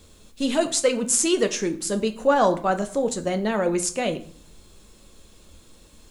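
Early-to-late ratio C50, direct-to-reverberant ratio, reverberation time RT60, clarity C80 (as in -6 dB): 14.5 dB, 7.0 dB, 0.55 s, 18.0 dB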